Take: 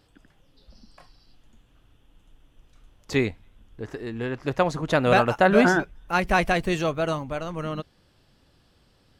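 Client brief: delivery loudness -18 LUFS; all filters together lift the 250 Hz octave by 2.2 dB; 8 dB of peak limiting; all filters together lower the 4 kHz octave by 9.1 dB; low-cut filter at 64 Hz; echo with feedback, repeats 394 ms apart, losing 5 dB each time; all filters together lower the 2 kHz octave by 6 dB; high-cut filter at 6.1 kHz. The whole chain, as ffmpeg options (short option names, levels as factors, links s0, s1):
-af "highpass=64,lowpass=6100,equalizer=f=250:t=o:g=3,equalizer=f=2000:t=o:g=-7,equalizer=f=4000:t=o:g=-8.5,alimiter=limit=0.224:level=0:latency=1,aecho=1:1:394|788|1182|1576|1970|2364|2758:0.562|0.315|0.176|0.0988|0.0553|0.031|0.0173,volume=2.24"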